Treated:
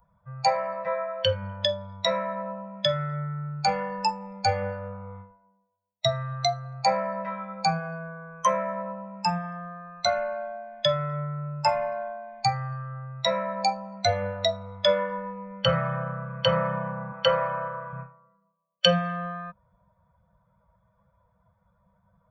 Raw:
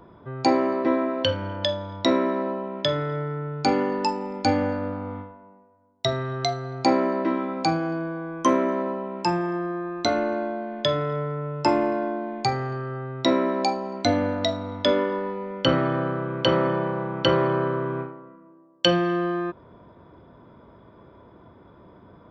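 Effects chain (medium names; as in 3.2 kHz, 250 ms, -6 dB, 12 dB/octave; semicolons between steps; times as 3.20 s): expander on every frequency bin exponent 1.5; Chebyshev band-stop 200–500 Hz, order 5; 17.12–17.93 s: resonant low shelf 210 Hz -9.5 dB, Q 1.5; trim +2.5 dB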